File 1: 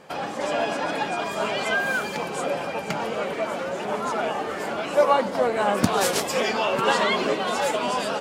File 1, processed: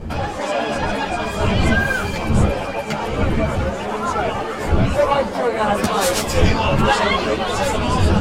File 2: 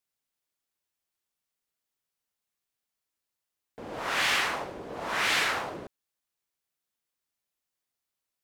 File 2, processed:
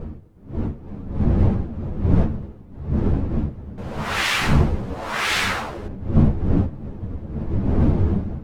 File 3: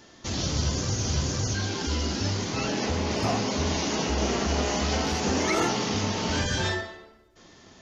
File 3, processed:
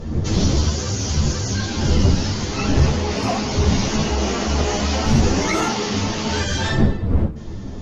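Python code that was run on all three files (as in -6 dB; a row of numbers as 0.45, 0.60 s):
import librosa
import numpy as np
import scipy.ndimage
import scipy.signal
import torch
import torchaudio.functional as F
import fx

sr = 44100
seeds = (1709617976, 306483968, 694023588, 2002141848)

y = fx.dmg_wind(x, sr, seeds[0], corner_hz=170.0, level_db=-25.0)
y = fx.cheby_harmonics(y, sr, harmonics=(5,), levels_db=(-11,), full_scale_db=-1.0)
y = fx.ensemble(y, sr)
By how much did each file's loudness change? +5.0, +5.0, +6.5 LU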